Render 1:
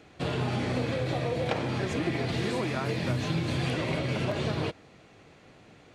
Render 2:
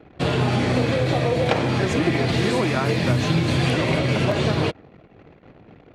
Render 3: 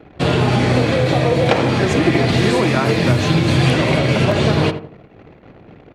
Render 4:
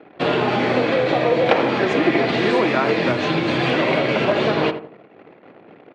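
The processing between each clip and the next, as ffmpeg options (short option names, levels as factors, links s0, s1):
-af "anlmdn=0.00158,volume=2.82"
-filter_complex "[0:a]asplit=2[s0][s1];[s1]adelay=82,lowpass=f=1400:p=1,volume=0.355,asplit=2[s2][s3];[s3]adelay=82,lowpass=f=1400:p=1,volume=0.35,asplit=2[s4][s5];[s5]adelay=82,lowpass=f=1400:p=1,volume=0.35,asplit=2[s6][s7];[s7]adelay=82,lowpass=f=1400:p=1,volume=0.35[s8];[s0][s2][s4][s6][s8]amix=inputs=5:normalize=0,volume=1.78"
-af "highpass=280,lowpass=3300"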